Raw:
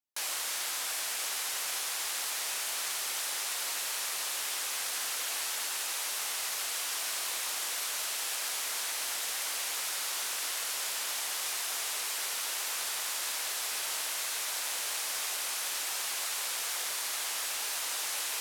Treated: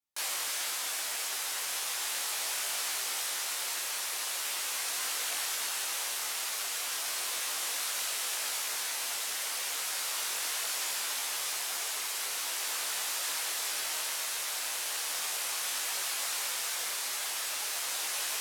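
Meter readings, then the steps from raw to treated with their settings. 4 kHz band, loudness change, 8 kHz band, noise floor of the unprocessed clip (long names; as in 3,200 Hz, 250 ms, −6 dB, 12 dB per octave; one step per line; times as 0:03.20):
+0.5 dB, 0.0 dB, 0.0 dB, −35 dBFS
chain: micro pitch shift up and down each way 13 cents
level +4 dB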